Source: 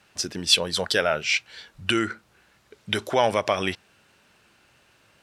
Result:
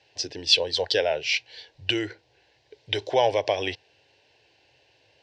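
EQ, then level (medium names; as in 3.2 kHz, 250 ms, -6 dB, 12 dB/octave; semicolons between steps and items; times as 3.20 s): cabinet simulation 110–4800 Hz, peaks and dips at 170 Hz -9 dB, 360 Hz -5 dB, 610 Hz -5 dB, 1.3 kHz -7 dB, 2.3 kHz -4 dB, 3.5 kHz -4 dB; static phaser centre 520 Hz, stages 4; +5.0 dB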